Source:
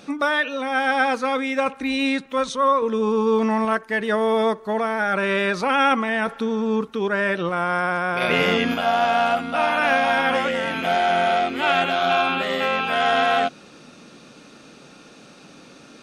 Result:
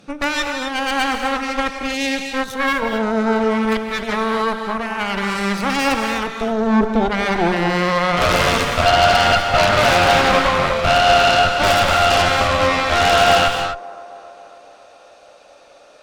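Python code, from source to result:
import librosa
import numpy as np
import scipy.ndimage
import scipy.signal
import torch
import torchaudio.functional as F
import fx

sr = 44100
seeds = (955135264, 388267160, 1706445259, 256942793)

p1 = fx.tracing_dist(x, sr, depth_ms=0.067)
p2 = (np.mod(10.0 ** (10.0 / 20.0) * p1 + 1.0, 2.0) - 1.0) / 10.0 ** (10.0 / 20.0)
p3 = p1 + F.gain(torch.from_numpy(p2), -11.0).numpy()
p4 = fx.filter_sweep_highpass(p3, sr, from_hz=120.0, to_hz=600.0, start_s=6.05, end_s=8.15, q=4.8)
p5 = fx.cheby_harmonics(p4, sr, harmonics=(3, 5, 8), levels_db=(-17, -28, -11), full_scale_db=1.0)
p6 = p5 + fx.echo_wet_bandpass(p5, sr, ms=274, feedback_pct=65, hz=600.0, wet_db=-18.0, dry=0)
p7 = fx.rev_gated(p6, sr, seeds[0], gate_ms=280, shape='rising', drr_db=4.5)
y = F.gain(torch.from_numpy(p7), -5.0).numpy()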